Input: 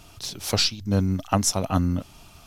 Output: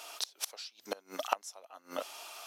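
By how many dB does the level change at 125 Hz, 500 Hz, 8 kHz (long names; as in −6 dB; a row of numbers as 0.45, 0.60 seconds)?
below −40 dB, −10.5 dB, −14.5 dB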